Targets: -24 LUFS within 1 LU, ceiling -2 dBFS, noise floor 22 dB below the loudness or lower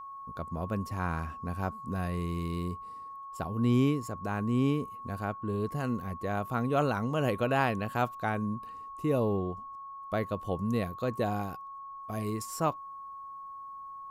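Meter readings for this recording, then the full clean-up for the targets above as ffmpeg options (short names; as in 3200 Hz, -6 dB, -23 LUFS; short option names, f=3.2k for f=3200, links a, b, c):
steady tone 1100 Hz; tone level -41 dBFS; loudness -32.0 LUFS; peak -13.5 dBFS; loudness target -24.0 LUFS
-> -af "bandreject=f=1.1k:w=30"
-af "volume=8dB"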